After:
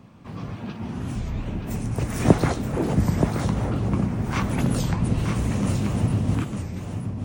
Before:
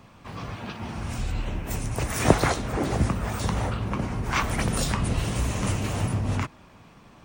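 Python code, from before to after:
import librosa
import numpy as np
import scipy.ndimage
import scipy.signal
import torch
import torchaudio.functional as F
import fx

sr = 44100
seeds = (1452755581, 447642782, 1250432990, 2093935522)

p1 = fx.peak_eq(x, sr, hz=190.0, db=11.0, octaves=2.7)
p2 = p1 + fx.echo_single(p1, sr, ms=926, db=-6.5, dry=0)
p3 = fx.record_warp(p2, sr, rpm=33.33, depth_cents=250.0)
y = F.gain(torch.from_numpy(p3), -5.5).numpy()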